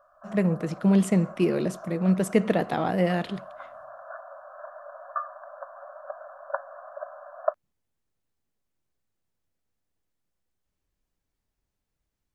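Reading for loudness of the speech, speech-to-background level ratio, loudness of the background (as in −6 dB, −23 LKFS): −25.0 LKFS, 15.0 dB, −40.0 LKFS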